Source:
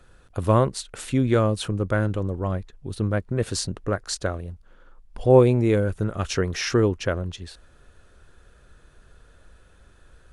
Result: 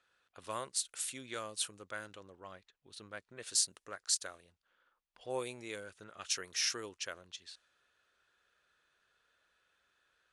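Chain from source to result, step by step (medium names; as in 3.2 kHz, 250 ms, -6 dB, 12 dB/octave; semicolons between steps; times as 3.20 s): differentiator; level-controlled noise filter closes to 2.8 kHz, open at -34.5 dBFS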